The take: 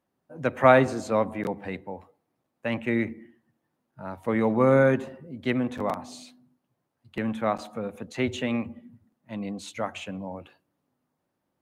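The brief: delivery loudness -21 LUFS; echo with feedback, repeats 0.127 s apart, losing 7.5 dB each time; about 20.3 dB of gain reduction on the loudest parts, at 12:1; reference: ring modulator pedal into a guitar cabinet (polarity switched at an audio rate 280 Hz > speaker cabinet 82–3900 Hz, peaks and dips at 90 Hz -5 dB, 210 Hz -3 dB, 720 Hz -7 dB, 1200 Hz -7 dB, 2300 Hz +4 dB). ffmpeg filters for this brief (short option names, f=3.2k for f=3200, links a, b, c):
-af "acompressor=threshold=-32dB:ratio=12,aecho=1:1:127|254|381|508|635:0.422|0.177|0.0744|0.0312|0.0131,aeval=exprs='val(0)*sgn(sin(2*PI*280*n/s))':c=same,highpass=82,equalizer=f=90:t=q:w=4:g=-5,equalizer=f=210:t=q:w=4:g=-3,equalizer=f=720:t=q:w=4:g=-7,equalizer=f=1.2k:t=q:w=4:g=-7,equalizer=f=2.3k:t=q:w=4:g=4,lowpass=f=3.9k:w=0.5412,lowpass=f=3.9k:w=1.3066,volume=18.5dB"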